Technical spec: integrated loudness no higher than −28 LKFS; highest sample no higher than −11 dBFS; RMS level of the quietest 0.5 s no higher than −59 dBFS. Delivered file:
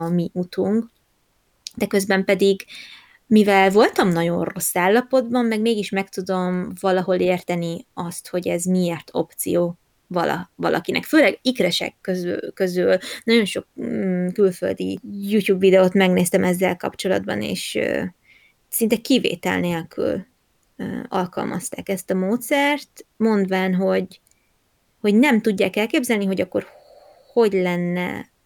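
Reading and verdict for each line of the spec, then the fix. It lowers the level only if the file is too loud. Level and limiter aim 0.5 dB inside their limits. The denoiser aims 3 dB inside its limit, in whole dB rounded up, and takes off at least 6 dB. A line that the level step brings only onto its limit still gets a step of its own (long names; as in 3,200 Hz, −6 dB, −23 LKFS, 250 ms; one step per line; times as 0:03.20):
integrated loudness −20.5 LKFS: out of spec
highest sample −5.0 dBFS: out of spec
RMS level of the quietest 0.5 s −65 dBFS: in spec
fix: level −8 dB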